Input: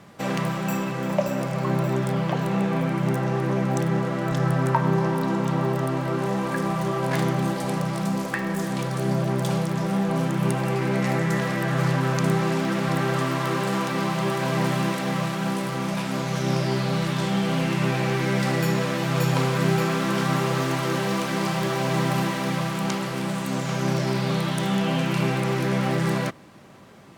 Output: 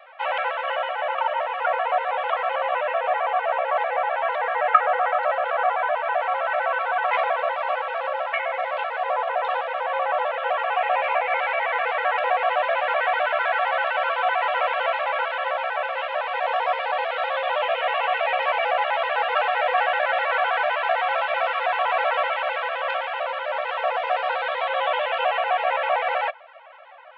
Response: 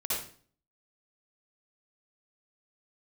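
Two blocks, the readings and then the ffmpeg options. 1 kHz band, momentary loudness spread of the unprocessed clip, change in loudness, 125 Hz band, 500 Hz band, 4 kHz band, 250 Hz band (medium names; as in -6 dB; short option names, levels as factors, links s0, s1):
+7.5 dB, 4 LU, +1.0 dB, under -40 dB, +2.0 dB, 0.0 dB, under -40 dB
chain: -af "highpass=f=240:t=q:w=0.5412,highpass=f=240:t=q:w=1.307,lowpass=f=2800:t=q:w=0.5176,lowpass=f=2800:t=q:w=0.7071,lowpass=f=2800:t=q:w=1.932,afreqshift=340,afftfilt=real='re*gt(sin(2*PI*7.8*pts/sr)*(1-2*mod(floor(b*sr/1024/270),2)),0)':imag='im*gt(sin(2*PI*7.8*pts/sr)*(1-2*mod(floor(b*sr/1024/270),2)),0)':win_size=1024:overlap=0.75,volume=2.37"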